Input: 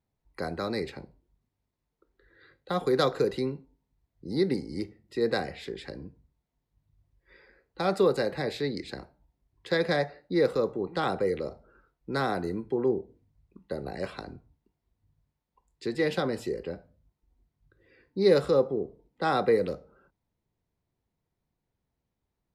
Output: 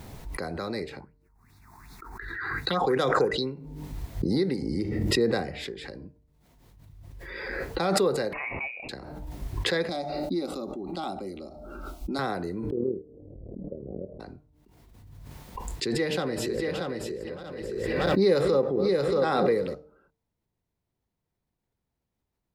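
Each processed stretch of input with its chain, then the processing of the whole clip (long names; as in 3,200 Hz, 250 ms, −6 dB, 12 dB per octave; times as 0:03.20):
0:01.00–0:03.47: de-essing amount 55% + phaser swept by the level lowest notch 530 Hz, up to 4,200 Hz, full sweep at −22 dBFS + auto-filter bell 2.7 Hz 790–4,000 Hz +17 dB
0:04.62–0:05.66: low-shelf EQ 420 Hz +6 dB + notch filter 4,100 Hz, Q 30
0:08.33–0:08.89: low-shelf EQ 450 Hz −6.5 dB + voice inversion scrambler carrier 2,700 Hz
0:09.89–0:12.19: parametric band 1,000 Hz −11 dB 0.25 octaves + phaser with its sweep stopped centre 470 Hz, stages 6
0:12.70–0:14.20: spike at every zero crossing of −30.5 dBFS + Butterworth low-pass 560 Hz 48 dB per octave + amplitude modulation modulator 38 Hz, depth 40%
0:15.86–0:19.74: feedback delay that plays each chunk backwards 315 ms, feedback 49%, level −12 dB + single-tap delay 630 ms −5 dB
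whole clip: hum removal 150.8 Hz, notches 4; background raised ahead of every attack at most 26 dB per second; level −1.5 dB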